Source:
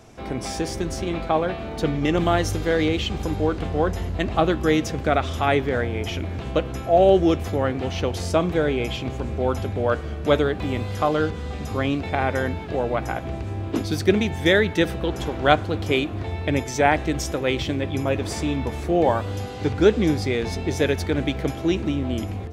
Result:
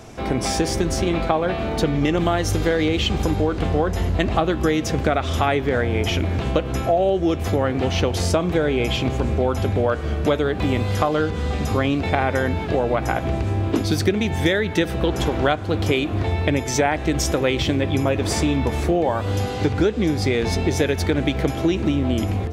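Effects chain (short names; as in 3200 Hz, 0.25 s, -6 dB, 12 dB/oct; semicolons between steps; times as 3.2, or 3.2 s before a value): compressor 10:1, threshold -23 dBFS, peak gain reduction 13.5 dB; gain +7.5 dB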